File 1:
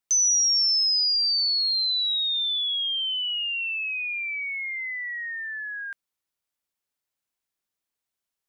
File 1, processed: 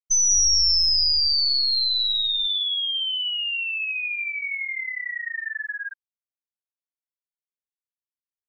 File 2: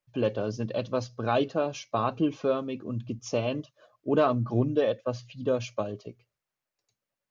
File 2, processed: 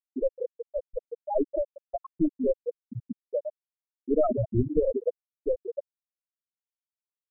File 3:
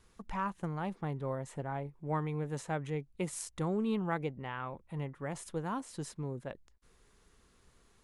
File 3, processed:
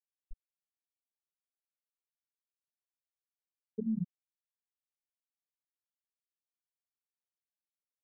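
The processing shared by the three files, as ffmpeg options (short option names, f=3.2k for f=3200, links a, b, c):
-filter_complex "[0:a]aeval=exprs='0.266*(cos(1*acos(clip(val(0)/0.266,-1,1)))-cos(1*PI/2))+0.0376*(cos(4*acos(clip(val(0)/0.266,-1,1)))-cos(4*PI/2))+0.00335*(cos(5*acos(clip(val(0)/0.266,-1,1)))-cos(5*PI/2))+0.00473*(cos(7*acos(clip(val(0)/0.266,-1,1)))-cos(7*PI/2))+0.0075*(cos(8*acos(clip(val(0)/0.266,-1,1)))-cos(8*PI/2))':c=same,asplit=2[a][b];[b]acompressor=threshold=-34dB:ratio=16,volume=1.5dB[c];[a][c]amix=inputs=2:normalize=0,asplit=6[d][e][f][g][h][i];[e]adelay=183,afreqshift=-53,volume=-5dB[j];[f]adelay=366,afreqshift=-106,volume=-13.2dB[k];[g]adelay=549,afreqshift=-159,volume=-21.4dB[l];[h]adelay=732,afreqshift=-212,volume=-29.5dB[m];[i]adelay=915,afreqshift=-265,volume=-37.7dB[n];[d][j][k][l][m][n]amix=inputs=6:normalize=0,afftfilt=real='re*gte(hypot(re,im),0.501)':imag='im*gte(hypot(re,im),0.501)':win_size=1024:overlap=0.75"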